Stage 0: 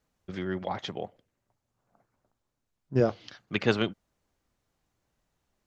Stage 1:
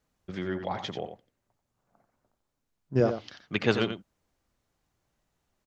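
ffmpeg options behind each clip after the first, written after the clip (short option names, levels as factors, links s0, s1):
-af "aecho=1:1:89:0.355"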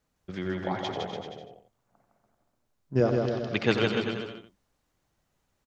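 -af "aecho=1:1:160|288|390.4|472.3|537.9:0.631|0.398|0.251|0.158|0.1"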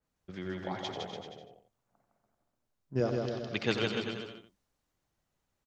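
-af "adynamicequalizer=threshold=0.00708:dfrequency=2900:dqfactor=0.7:tfrequency=2900:tqfactor=0.7:attack=5:release=100:ratio=0.375:range=3:mode=boostabove:tftype=highshelf,volume=0.473"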